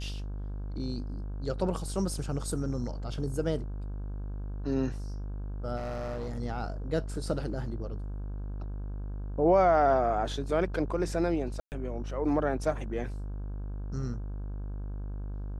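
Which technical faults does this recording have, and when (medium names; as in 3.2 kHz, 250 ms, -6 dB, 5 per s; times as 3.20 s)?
buzz 50 Hz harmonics 33 -36 dBFS
5.76–6.39 s: clipped -31.5 dBFS
11.60–11.72 s: dropout 119 ms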